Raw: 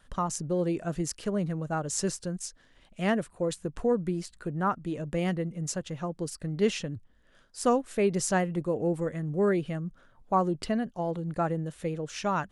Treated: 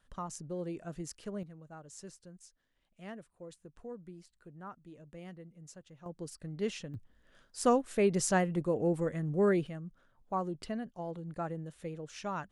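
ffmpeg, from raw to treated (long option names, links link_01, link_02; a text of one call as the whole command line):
ffmpeg -i in.wav -af "asetnsamples=nb_out_samples=441:pad=0,asendcmd='1.43 volume volume -19dB;6.06 volume volume -9dB;6.94 volume volume -2dB;9.67 volume volume -9dB',volume=-10.5dB" out.wav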